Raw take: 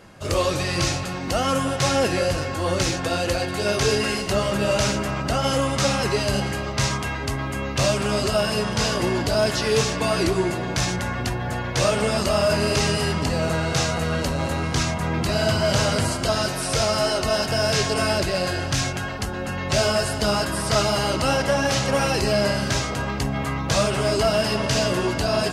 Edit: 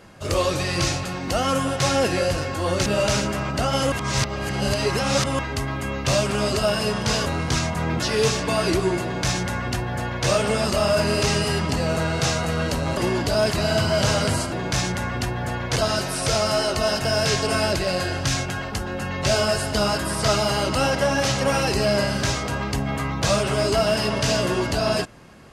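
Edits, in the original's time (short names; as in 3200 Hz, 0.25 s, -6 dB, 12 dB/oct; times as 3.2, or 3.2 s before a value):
2.86–4.57 cut
5.63–7.1 reverse
8.97–9.53 swap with 14.5–15.24
10.56–11.8 copy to 16.23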